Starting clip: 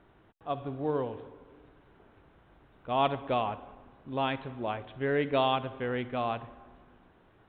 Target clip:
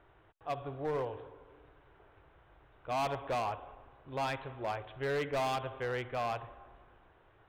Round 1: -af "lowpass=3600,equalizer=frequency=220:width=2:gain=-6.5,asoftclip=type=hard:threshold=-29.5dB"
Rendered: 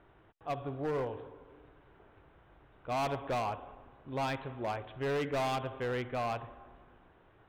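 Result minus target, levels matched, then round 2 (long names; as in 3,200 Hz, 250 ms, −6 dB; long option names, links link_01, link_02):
250 Hz band +3.5 dB
-af "lowpass=3600,equalizer=frequency=220:width=2:gain=-17,asoftclip=type=hard:threshold=-29.5dB"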